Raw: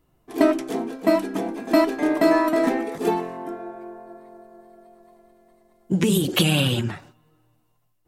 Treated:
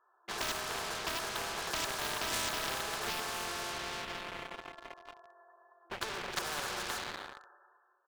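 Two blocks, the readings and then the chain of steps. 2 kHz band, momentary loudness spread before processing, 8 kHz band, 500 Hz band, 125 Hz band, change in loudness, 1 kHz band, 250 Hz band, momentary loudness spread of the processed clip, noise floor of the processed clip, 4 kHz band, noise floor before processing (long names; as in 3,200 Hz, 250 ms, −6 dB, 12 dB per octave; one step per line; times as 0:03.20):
−6.0 dB, 16 LU, −3.0 dB, −19.5 dB, −24.0 dB, −14.5 dB, −9.5 dB, −27.5 dB, 14 LU, −70 dBFS, −7.5 dB, −66 dBFS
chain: low shelf with overshoot 720 Hz −12 dB, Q 1.5
in parallel at −3 dB: downward compressor 16 to 1, threshold −36 dBFS, peak gain reduction 20 dB
on the sum: flanger 1.7 Hz, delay 6.1 ms, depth 5 ms, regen −88%
comb filter 6.9 ms, depth 30%
comb and all-pass reverb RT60 2 s, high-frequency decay 0.8×, pre-delay 30 ms, DRR 9.5 dB
brick-wall band-pass 340–1,800 Hz
leveller curve on the samples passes 3
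every bin compressed towards the loudest bin 4 to 1
level −4 dB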